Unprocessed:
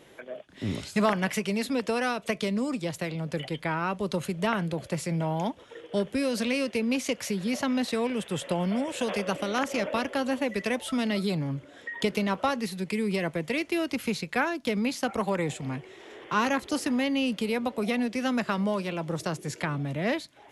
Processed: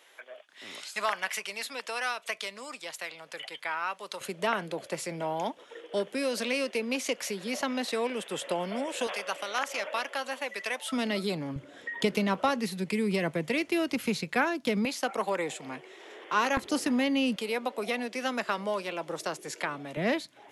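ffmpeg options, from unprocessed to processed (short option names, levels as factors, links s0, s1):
-af "asetnsamples=n=441:p=0,asendcmd='4.21 highpass f 350;9.07 highpass f 760;10.92 highpass f 250;11.56 highpass f 110;14.85 highpass f 380;16.57 highpass f 120;17.36 highpass f 400;19.97 highpass f 140',highpass=930"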